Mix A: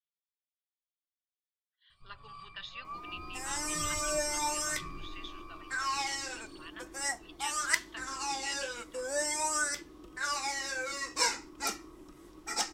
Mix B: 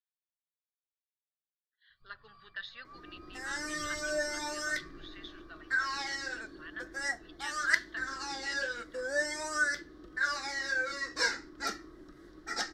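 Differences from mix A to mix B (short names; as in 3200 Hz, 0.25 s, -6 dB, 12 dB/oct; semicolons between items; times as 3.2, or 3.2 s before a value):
first sound -9.0 dB; master: add EQ curve 660 Hz 0 dB, 940 Hz -9 dB, 1700 Hz +9 dB, 2500 Hz -10 dB, 4200 Hz +2 dB, 8000 Hz -12 dB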